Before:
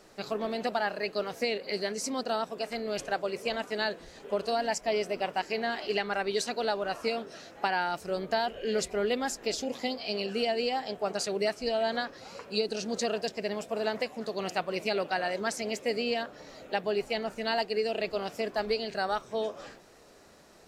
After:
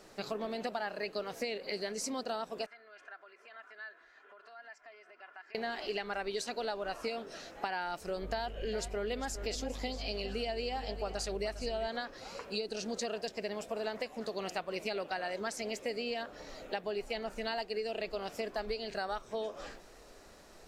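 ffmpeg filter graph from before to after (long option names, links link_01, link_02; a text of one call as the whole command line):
ffmpeg -i in.wav -filter_complex "[0:a]asettb=1/sr,asplit=3[link_01][link_02][link_03];[link_01]atrim=end=2.664[link_04];[link_02]atrim=start=2.66:end=5.55,asetpts=PTS-STARTPTS,afade=type=in:duration=0.004:curve=qsin,afade=type=out:start_time=2.886:duration=0.004:curve=qsin,aecho=1:1:2.9:0.5,atrim=end_sample=127449,acompressor=threshold=-36dB:ratio=5:attack=3.2:release=140:knee=1:detection=peak,bandpass=frequency=1500:width_type=q:width=3.7[link_05];[link_03]atrim=start=5.546[link_06];[link_04][link_05]acrossfade=duration=0.004:curve1=hsin:curve2=qsin[link_07];[link_07][link_06]acrossfade=duration=0.004:curve1=qsin:curve2=hsin,asettb=1/sr,asplit=3[link_08][link_09][link_10];[link_08]atrim=end=8.224[link_11];[link_09]atrim=start=8.22:end=11.87,asetpts=PTS-STARTPTS,afade=type=in:duration=0.004:curve=qsin,afade=type=out:start_time=3.646:duration=0.004:curve=qsin,aeval=exprs='val(0)+0.00631*(sin(2*PI*50*n/s)+sin(2*PI*2*50*n/s)/2+sin(2*PI*3*50*n/s)/3+sin(2*PI*4*50*n/s)/4+sin(2*PI*5*50*n/s)/5)':channel_layout=same,aecho=1:1:405:0.2,atrim=end_sample=160965[link_12];[link_10]atrim=start=11.866[link_13];[link_11][link_12]acrossfade=duration=0.004:curve1=hsin:curve2=qsin[link_14];[link_14][link_13]acrossfade=duration=0.004:curve1=qsin:curve2=hsin,asubboost=boost=5:cutoff=50,acompressor=threshold=-35dB:ratio=3" out.wav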